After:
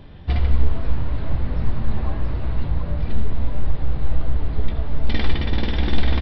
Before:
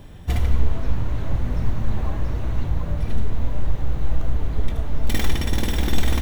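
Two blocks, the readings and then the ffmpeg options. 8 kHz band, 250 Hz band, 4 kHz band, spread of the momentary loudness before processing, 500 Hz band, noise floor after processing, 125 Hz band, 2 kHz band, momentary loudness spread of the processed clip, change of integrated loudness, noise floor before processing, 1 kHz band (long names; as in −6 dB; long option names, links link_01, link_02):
can't be measured, +0.5 dB, 0.0 dB, 4 LU, +0.5 dB, −28 dBFS, +0.5 dB, +0.5 dB, 5 LU, +0.5 dB, −28 dBFS, +0.5 dB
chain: -filter_complex "[0:a]asplit=2[link_01][link_02];[link_02]adelay=14,volume=-11dB[link_03];[link_01][link_03]amix=inputs=2:normalize=0,aresample=11025,aresample=44100"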